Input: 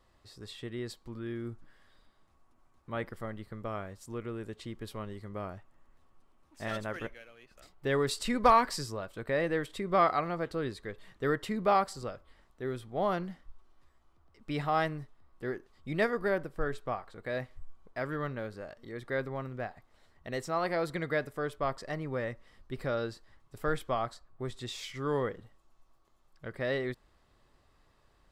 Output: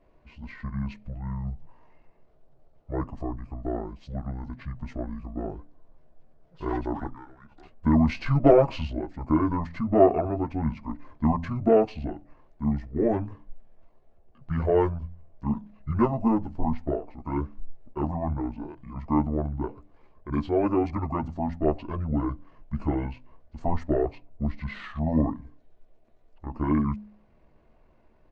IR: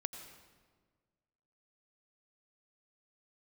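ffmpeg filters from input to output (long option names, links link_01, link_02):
-af "aemphasis=mode=reproduction:type=75kf,aecho=1:1:7.5:0.94,bandreject=frequency=74.67:width_type=h:width=4,bandreject=frequency=149.34:width_type=h:width=4,bandreject=frequency=224.01:width_type=h:width=4,bandreject=frequency=298.68:width_type=h:width=4,bandreject=frequency=373.35:width_type=h:width=4,bandreject=frequency=448.02:width_type=h:width=4,bandreject=frequency=522.69:width_type=h:width=4,asetrate=24750,aresample=44100,atempo=1.7818,volume=5dB"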